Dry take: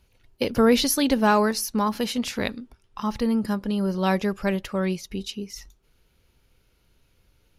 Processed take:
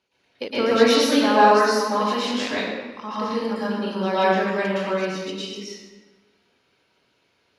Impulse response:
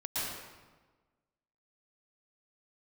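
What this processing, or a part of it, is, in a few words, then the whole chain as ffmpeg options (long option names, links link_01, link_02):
supermarket ceiling speaker: -filter_complex "[0:a]highpass=300,lowpass=5700[link_01];[1:a]atrim=start_sample=2205[link_02];[link_01][link_02]afir=irnorm=-1:irlink=0"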